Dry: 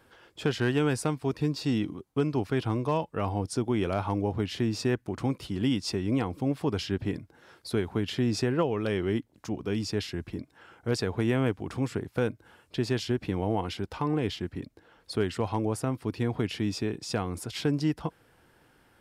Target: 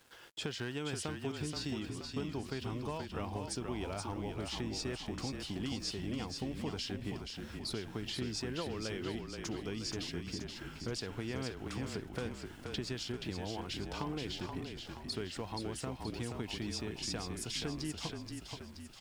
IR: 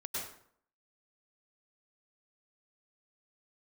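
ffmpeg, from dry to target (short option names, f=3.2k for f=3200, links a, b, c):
-filter_complex "[0:a]lowpass=8.1k,highshelf=f=2.7k:g=11,acompressor=threshold=-35dB:ratio=4,aeval=exprs='val(0)*gte(abs(val(0)),0.00168)':c=same,asplit=2[a][b];[b]asplit=7[c][d][e][f][g][h][i];[c]adelay=477,afreqshift=-32,volume=-5dB[j];[d]adelay=954,afreqshift=-64,volume=-10.5dB[k];[e]adelay=1431,afreqshift=-96,volume=-16dB[l];[f]adelay=1908,afreqshift=-128,volume=-21.5dB[m];[g]adelay=2385,afreqshift=-160,volume=-27.1dB[n];[h]adelay=2862,afreqshift=-192,volume=-32.6dB[o];[i]adelay=3339,afreqshift=-224,volume=-38.1dB[p];[j][k][l][m][n][o][p]amix=inputs=7:normalize=0[q];[a][q]amix=inputs=2:normalize=0,volume=-3dB"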